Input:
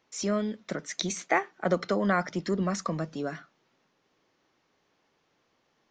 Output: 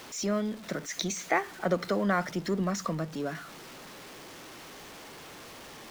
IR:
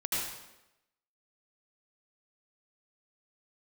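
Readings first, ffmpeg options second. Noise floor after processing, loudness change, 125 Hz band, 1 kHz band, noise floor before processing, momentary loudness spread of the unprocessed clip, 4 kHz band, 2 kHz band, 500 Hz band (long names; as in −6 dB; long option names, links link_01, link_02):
−47 dBFS, −1.0 dB, −1.0 dB, −1.0 dB, −73 dBFS, 9 LU, +0.5 dB, −1.0 dB, −1.5 dB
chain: -af "aeval=exprs='val(0)+0.5*0.0112*sgn(val(0))':channel_layout=same,volume=-2dB"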